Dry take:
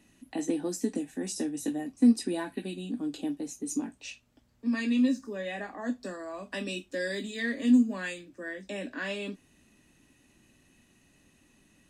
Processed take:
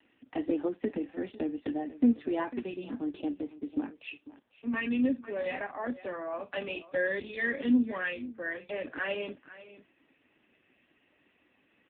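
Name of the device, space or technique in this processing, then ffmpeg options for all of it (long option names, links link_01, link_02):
satellite phone: -af "highpass=380,lowpass=3300,aecho=1:1:498:0.15,volume=5dB" -ar 8000 -c:a libopencore_amrnb -b:a 5150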